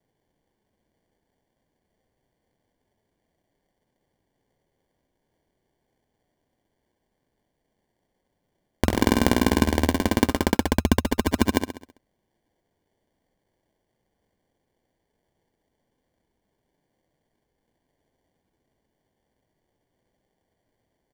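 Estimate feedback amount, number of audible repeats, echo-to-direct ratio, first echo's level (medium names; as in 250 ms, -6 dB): 48%, 5, -6.5 dB, -7.5 dB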